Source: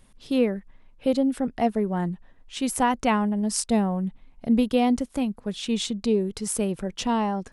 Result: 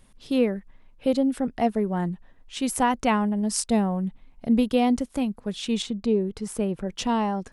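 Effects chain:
0:05.82–0:06.88: parametric band 9,400 Hz −10 dB 2.7 octaves

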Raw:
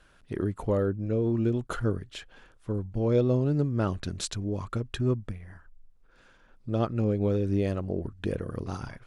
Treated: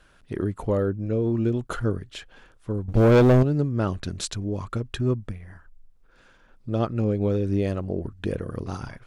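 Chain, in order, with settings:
0:02.88–0:03.43: leveller curve on the samples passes 3
level +2.5 dB

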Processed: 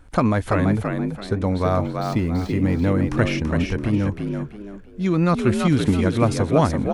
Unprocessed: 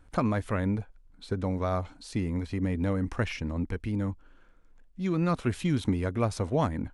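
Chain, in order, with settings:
0:01.45–0:03.00: running median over 5 samples
on a send: echo with shifted repeats 334 ms, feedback 31%, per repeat +50 Hz, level −5 dB
on the sum: level +8 dB

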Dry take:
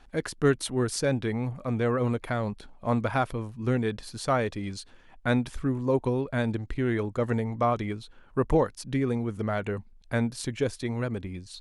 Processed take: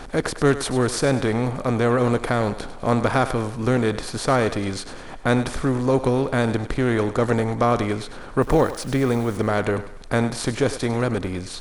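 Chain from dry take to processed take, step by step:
compressor on every frequency bin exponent 0.6
0:08.42–0:09.37: bit-depth reduction 8 bits, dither none
feedback echo with a high-pass in the loop 101 ms, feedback 43%, high-pass 390 Hz, level −12 dB
level +3 dB

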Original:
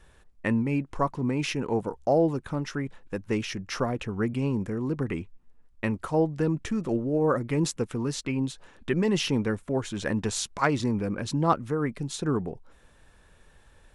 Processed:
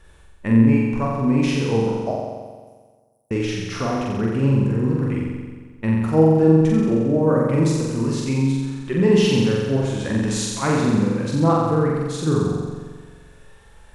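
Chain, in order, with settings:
harmonic and percussive parts rebalanced harmonic +9 dB
0:02.11–0:03.31: inverse Chebyshev high-pass filter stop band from 2,500 Hz, stop band 80 dB
on a send: flutter between parallel walls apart 7.6 metres, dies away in 1.5 s
on the sum: level −3 dB

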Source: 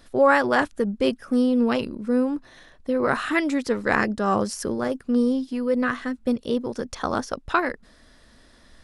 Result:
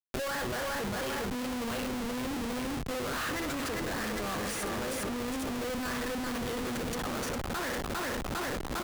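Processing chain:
spectral tilt +3 dB per octave
flutter between parallel walls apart 10.3 metres, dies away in 0.35 s
in parallel at −10 dB: soft clipping −13.5 dBFS, distortion −15 dB
on the sum: high-shelf EQ 3,700 Hz +3 dB
repeating echo 403 ms, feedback 53%, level −7 dB
reversed playback
downward compressor 5 to 1, threshold −30 dBFS, peak gain reduction 17 dB
reversed playback
notch filter 5,300 Hz, Q 5.3
comparator with hysteresis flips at −37.5 dBFS
multiband upward and downward compressor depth 70%

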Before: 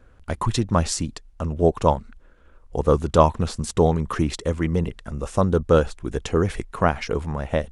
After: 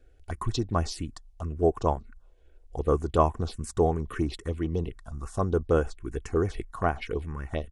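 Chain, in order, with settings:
comb filter 2.7 ms, depth 41%
phaser swept by the level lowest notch 170 Hz, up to 4,100 Hz, full sweep at −15 dBFS
level −6 dB

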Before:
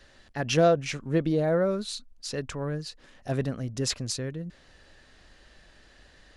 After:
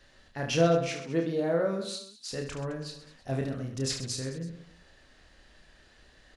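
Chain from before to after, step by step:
0:00.87–0:02.32: high-pass filter 190 Hz 12 dB per octave
on a send: reverse bouncing-ball delay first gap 30 ms, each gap 1.4×, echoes 5
on the sum: level −4.5 dB

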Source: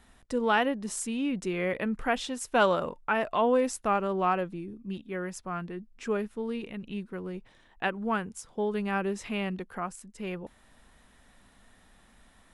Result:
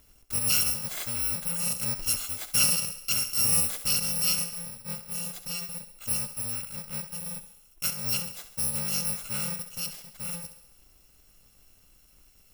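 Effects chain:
samples in bit-reversed order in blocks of 128 samples
feedback echo with a high-pass in the loop 67 ms, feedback 59%, high-pass 210 Hz, level −11.5 dB

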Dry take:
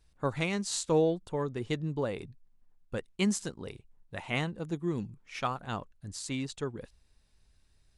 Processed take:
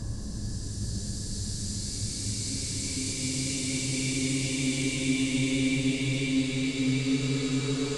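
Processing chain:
wind on the microphone 100 Hz −47 dBFS
extreme stretch with random phases 15×, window 0.50 s, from 0:05.99
level +8 dB

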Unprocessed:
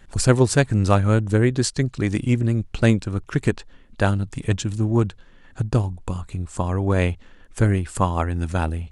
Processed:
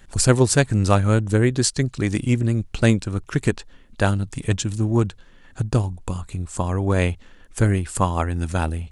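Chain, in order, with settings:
high-shelf EQ 5,000 Hz +6.5 dB

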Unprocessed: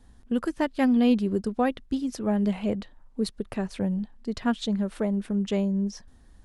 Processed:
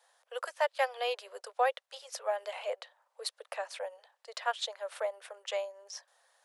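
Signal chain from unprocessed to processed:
Butterworth high-pass 510 Hz 72 dB per octave

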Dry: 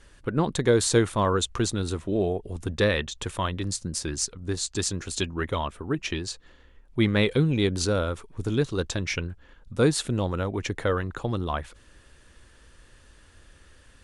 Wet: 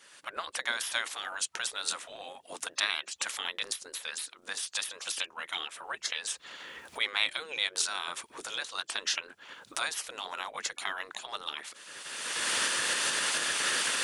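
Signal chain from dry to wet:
camcorder AGC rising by 31 dB per second
gate on every frequency bin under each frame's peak −15 dB weak
high-pass filter 1,400 Hz 6 dB per octave
level +3.5 dB

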